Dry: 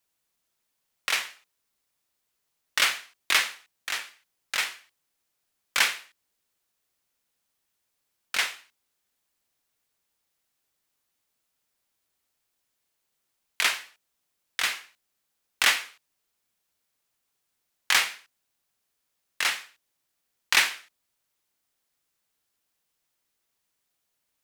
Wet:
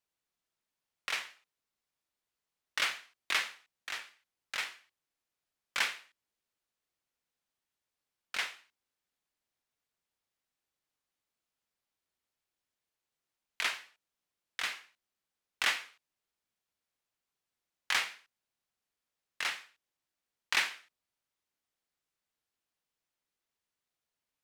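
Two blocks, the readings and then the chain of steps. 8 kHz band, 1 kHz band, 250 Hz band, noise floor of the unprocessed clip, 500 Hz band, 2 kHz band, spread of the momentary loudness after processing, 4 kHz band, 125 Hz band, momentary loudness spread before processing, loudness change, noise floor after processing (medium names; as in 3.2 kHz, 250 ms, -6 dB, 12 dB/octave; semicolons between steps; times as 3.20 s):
-12.0 dB, -7.5 dB, -7.5 dB, -79 dBFS, -7.5 dB, -8.0 dB, 15 LU, -9.0 dB, no reading, 15 LU, -8.5 dB, under -85 dBFS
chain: treble shelf 7.6 kHz -9.5 dB; trim -7.5 dB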